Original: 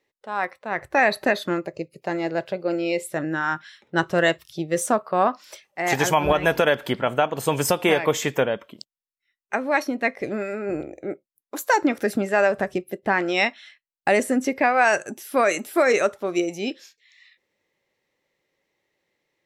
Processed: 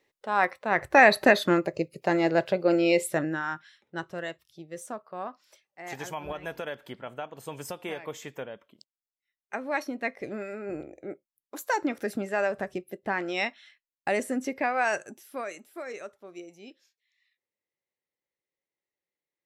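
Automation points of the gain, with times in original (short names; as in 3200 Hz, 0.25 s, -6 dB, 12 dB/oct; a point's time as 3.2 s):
3.09 s +2 dB
3.43 s -7 dB
4.28 s -16.5 dB
8.51 s -16.5 dB
9.72 s -8 dB
14.95 s -8 dB
15.67 s -20 dB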